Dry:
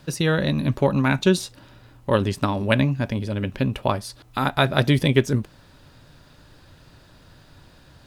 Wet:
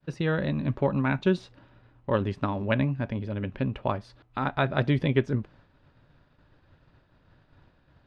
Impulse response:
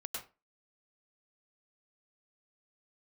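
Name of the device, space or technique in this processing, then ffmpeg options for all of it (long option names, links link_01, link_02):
hearing-loss simulation: -af "lowpass=2500,agate=range=-33dB:threshold=-45dB:ratio=3:detection=peak,volume=-5.5dB"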